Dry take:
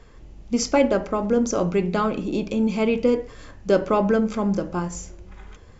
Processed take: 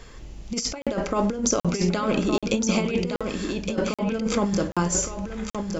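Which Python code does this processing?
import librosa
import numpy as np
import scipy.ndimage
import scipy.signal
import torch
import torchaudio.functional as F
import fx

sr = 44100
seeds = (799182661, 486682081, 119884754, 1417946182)

y = fx.high_shelf(x, sr, hz=2300.0, db=9.5)
y = fx.over_compress(y, sr, threshold_db=-23.0, ratio=-0.5)
y = y + 10.0 ** (-6.0 / 20.0) * np.pad(y, (int(1164 * sr / 1000.0), 0))[:len(y)]
y = fx.buffer_crackle(y, sr, first_s=0.82, period_s=0.78, block=2048, kind='zero')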